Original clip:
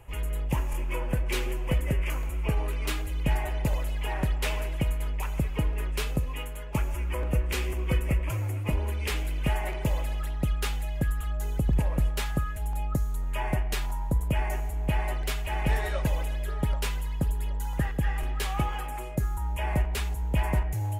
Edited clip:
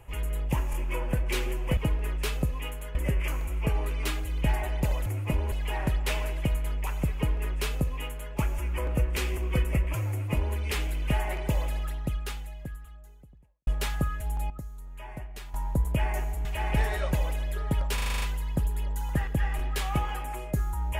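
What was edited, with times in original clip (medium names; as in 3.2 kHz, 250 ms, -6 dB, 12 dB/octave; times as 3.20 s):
5.51–6.69 s: copy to 1.77 s
8.45–8.91 s: copy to 3.88 s
10.13–12.03 s: fade out quadratic
12.86–13.90 s: gain -12 dB
14.81–15.37 s: delete
16.86 s: stutter 0.04 s, 8 plays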